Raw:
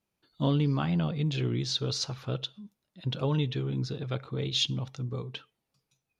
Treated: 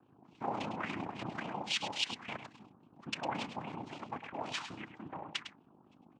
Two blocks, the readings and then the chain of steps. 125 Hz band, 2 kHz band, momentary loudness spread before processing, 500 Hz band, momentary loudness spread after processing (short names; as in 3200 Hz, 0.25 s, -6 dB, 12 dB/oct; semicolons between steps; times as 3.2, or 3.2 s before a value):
-21.5 dB, +2.5 dB, 9 LU, -9.5 dB, 11 LU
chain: hum 50 Hz, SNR 12 dB; in parallel at -1 dB: compressor, threshold -34 dBFS, peak gain reduction 12 dB; on the sum: noise vocoder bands 4; tilt +4 dB/oct; AM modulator 31 Hz, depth 35%; LFO low-pass sine 3.6 Hz 770–2800 Hz; on a send: echo 0.104 s -10 dB; on the sum: gain -7.5 dB